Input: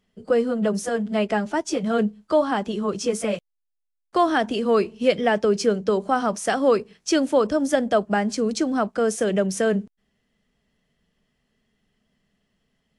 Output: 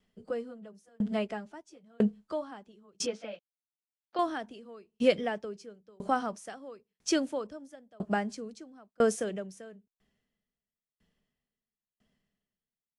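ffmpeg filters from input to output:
-filter_complex "[0:a]asettb=1/sr,asplit=3[s0][s1][s2];[s0]atrim=end=3.064[s3];[s1]atrim=start=3.06:end=4.19,asetpts=PTS-STARTPTS,afade=t=in:d=0.004:c=qsin,afade=t=out:st=1.126:d=0.004:c=qsin,highpass=340,equalizer=f=410:t=q:w=4:g=-9,equalizer=f=1100:t=q:w=4:g=-9,equalizer=f=2000:t=q:w=4:g=-5,lowpass=f=4300:w=0.5412,lowpass=f=4300:w=1.3066[s4];[s2]atrim=start=4.186[s5];[s3][s4]acrossfade=d=0.004:c1=hsin:c2=qsin[s6];[s6][s5]acrossfade=d=0.004:c1=qsin:c2=hsin,aeval=exprs='val(0)*pow(10,-38*if(lt(mod(1*n/s,1),2*abs(1)/1000),1-mod(1*n/s,1)/(2*abs(1)/1000),(mod(1*n/s,1)-2*abs(1)/1000)/(1-2*abs(1)/1000))/20)':c=same,volume=0.841"

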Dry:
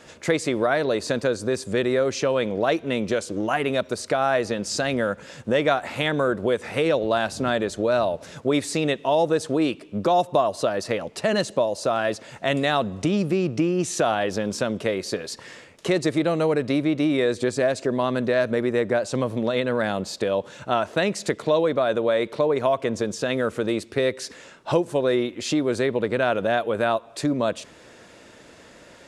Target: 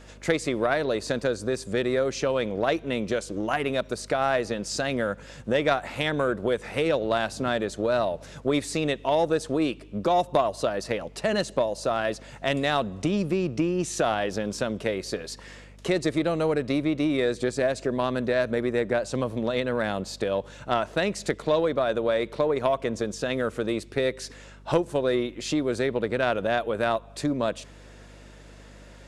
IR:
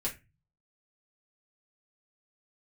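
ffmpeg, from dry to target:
-af "aeval=exprs='0.473*(cos(1*acos(clip(val(0)/0.473,-1,1)))-cos(1*PI/2))+0.0531*(cos(3*acos(clip(val(0)/0.473,-1,1)))-cos(3*PI/2))':c=same,aeval=exprs='val(0)+0.00398*(sin(2*PI*50*n/s)+sin(2*PI*2*50*n/s)/2+sin(2*PI*3*50*n/s)/3+sin(2*PI*4*50*n/s)/4+sin(2*PI*5*50*n/s)/5)':c=same"

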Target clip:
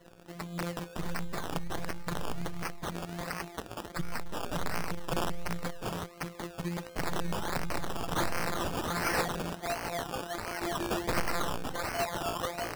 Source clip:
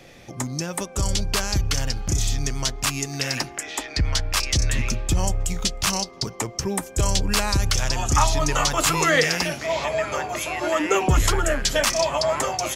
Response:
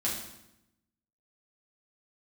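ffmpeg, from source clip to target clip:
-af "afftfilt=real='hypot(re,im)*cos(PI*b)':imag='0':win_size=1024:overlap=0.75,acrusher=samples=17:mix=1:aa=0.000001:lfo=1:lforange=10.2:lforate=1.4,aeval=exprs='(mod(7.5*val(0)+1,2)-1)/7.5':c=same,volume=0.562"

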